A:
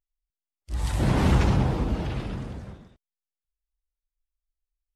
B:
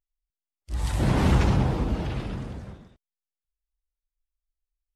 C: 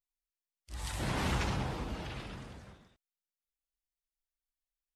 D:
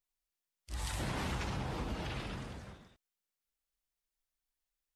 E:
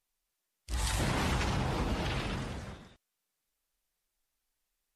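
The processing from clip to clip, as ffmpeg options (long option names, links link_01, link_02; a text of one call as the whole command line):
ffmpeg -i in.wav -af anull out.wav
ffmpeg -i in.wav -af "tiltshelf=frequency=740:gain=-5.5,volume=-8.5dB" out.wav
ffmpeg -i in.wav -af "acompressor=threshold=-37dB:ratio=6,volume=3dB" out.wav
ffmpeg -i in.wav -af "volume=6.5dB" -ar 44100 -c:a libmp3lame -b:a 56k out.mp3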